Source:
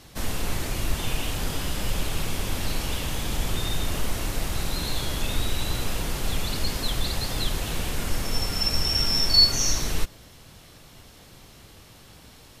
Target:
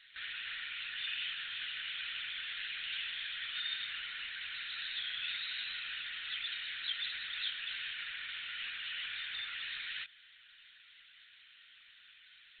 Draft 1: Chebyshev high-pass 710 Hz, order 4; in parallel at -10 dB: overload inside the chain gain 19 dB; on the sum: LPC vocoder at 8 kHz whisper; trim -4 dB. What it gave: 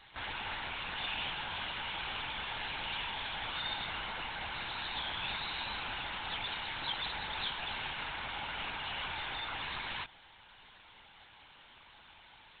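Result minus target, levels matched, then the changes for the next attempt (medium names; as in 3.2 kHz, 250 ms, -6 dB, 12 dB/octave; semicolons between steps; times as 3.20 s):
1 kHz band +14.5 dB
change: Chebyshev high-pass 1.6 kHz, order 4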